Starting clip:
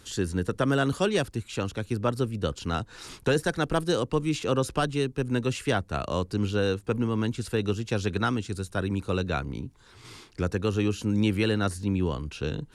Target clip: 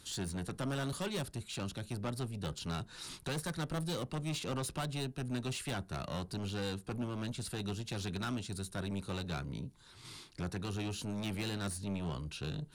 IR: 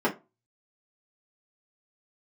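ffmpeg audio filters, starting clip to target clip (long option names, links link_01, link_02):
-filter_complex "[0:a]equalizer=frequency=160:width_type=o:width=0.67:gain=7,equalizer=frequency=400:width_type=o:width=0.67:gain=-4,equalizer=frequency=4000:width_type=o:width=0.67:gain=7,equalizer=frequency=10000:width_type=o:width=0.67:gain=9,asoftclip=type=tanh:threshold=-26dB,asplit=2[link_01][link_02];[1:a]atrim=start_sample=2205[link_03];[link_02][link_03]afir=irnorm=-1:irlink=0,volume=-26.5dB[link_04];[link_01][link_04]amix=inputs=2:normalize=0,volume=-7.5dB"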